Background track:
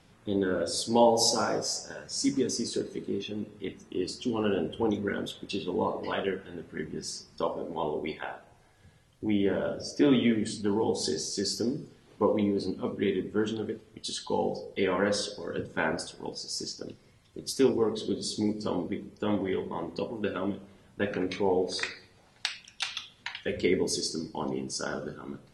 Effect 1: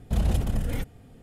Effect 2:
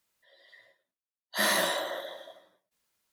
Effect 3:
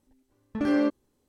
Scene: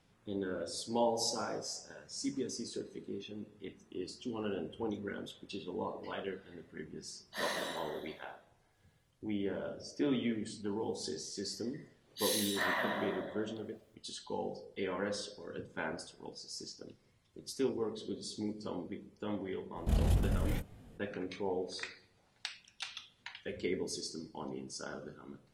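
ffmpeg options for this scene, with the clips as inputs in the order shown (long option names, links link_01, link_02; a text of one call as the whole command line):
ffmpeg -i bed.wav -i cue0.wav -i cue1.wav -filter_complex "[2:a]asplit=2[link_01][link_02];[0:a]volume=-10dB[link_03];[link_01]acrossover=split=8300[link_04][link_05];[link_05]acompressor=threshold=-44dB:ratio=4:attack=1:release=60[link_06];[link_04][link_06]amix=inputs=2:normalize=0[link_07];[link_02]acrossover=split=560|2700[link_08][link_09][link_10];[link_09]adelay=380[link_11];[link_08]adelay=620[link_12];[link_12][link_11][link_10]amix=inputs=3:normalize=0[link_13];[1:a]flanger=delay=18:depth=7.9:speed=2[link_14];[link_07]atrim=end=3.12,asetpts=PTS-STARTPTS,volume=-11.5dB,afade=type=in:duration=0.004:curve=hsin,afade=type=out:start_time=3.116:duration=0.004:curve=hsin,adelay=5990[link_15];[link_13]atrim=end=3.12,asetpts=PTS-STARTPTS,volume=-4dB,afade=type=in:duration=0.004:curve=hsin,afade=type=out:start_time=3.116:duration=0.004:curve=hsin,adelay=10830[link_16];[link_14]atrim=end=1.22,asetpts=PTS-STARTPTS,volume=-2.5dB,afade=type=in:duration=0.004:curve=hsin,afade=type=out:start_time=1.216:duration=0.004:curve=hsin,adelay=19760[link_17];[link_03][link_15][link_16][link_17]amix=inputs=4:normalize=0" out.wav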